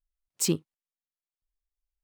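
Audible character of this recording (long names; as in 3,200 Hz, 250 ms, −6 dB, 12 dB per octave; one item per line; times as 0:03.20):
background noise floor −96 dBFS
spectral slope −4.0 dB per octave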